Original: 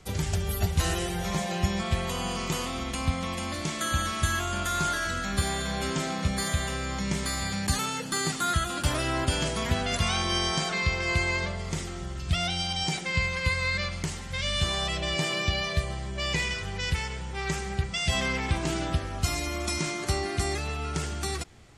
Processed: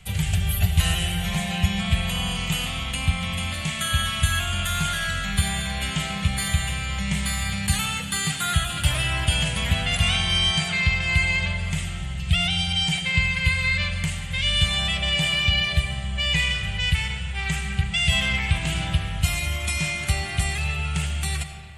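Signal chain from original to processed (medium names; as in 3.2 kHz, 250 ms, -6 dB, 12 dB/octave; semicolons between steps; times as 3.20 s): FFT filter 170 Hz 0 dB, 320 Hz -19 dB, 730 Hz -6 dB, 1.1 kHz -9 dB, 2.9 kHz +5 dB, 5.5 kHz -10 dB, 8.6 kHz +1 dB; reverberation RT60 2.1 s, pre-delay 40 ms, DRR 7.5 dB; trim +5.5 dB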